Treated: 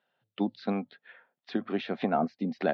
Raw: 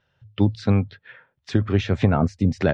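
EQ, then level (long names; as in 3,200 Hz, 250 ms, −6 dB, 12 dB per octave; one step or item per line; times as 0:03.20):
elliptic band-pass filter 210–4,300 Hz, stop band 40 dB
parametric band 720 Hz +9.5 dB 0.24 octaves
−7.0 dB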